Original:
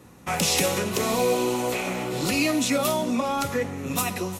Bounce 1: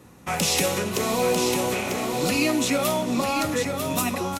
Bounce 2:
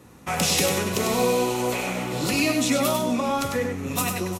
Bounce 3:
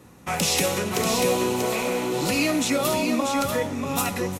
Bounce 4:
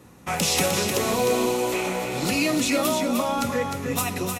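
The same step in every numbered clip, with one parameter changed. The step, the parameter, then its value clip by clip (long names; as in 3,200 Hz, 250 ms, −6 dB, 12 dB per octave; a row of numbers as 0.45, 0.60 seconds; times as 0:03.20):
single-tap delay, delay time: 946, 98, 638, 305 milliseconds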